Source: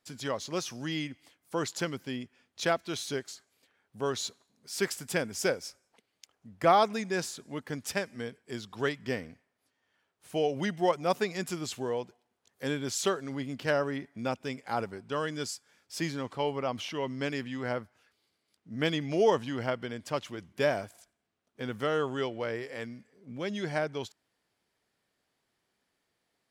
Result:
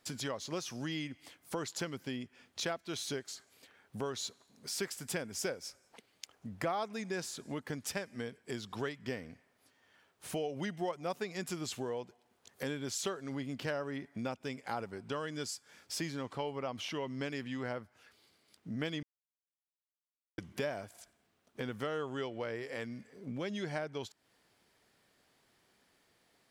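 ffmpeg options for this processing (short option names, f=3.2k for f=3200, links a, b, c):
-filter_complex "[0:a]asplit=3[a][b][c];[a]atrim=end=19.03,asetpts=PTS-STARTPTS,afade=t=out:st=19.026:d=0.004:c=hsin[d];[b]atrim=start=19.03:end=20.38,asetpts=PTS-STARTPTS,volume=0[e];[c]atrim=start=20.38,asetpts=PTS-STARTPTS,afade=t=in:d=0.004:c=hsin[f];[d][e][f]concat=n=3:v=0:a=1,acompressor=threshold=-48dB:ratio=3,volume=8dB"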